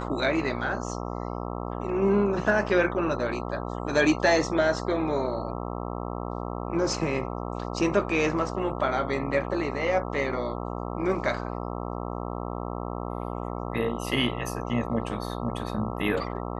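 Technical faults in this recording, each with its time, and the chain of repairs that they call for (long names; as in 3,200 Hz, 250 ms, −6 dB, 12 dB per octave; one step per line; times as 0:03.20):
mains buzz 60 Hz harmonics 22 −33 dBFS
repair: hum removal 60 Hz, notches 22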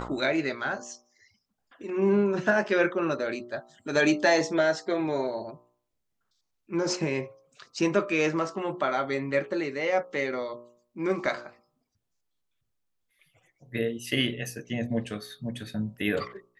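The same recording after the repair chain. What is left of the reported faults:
none of them is left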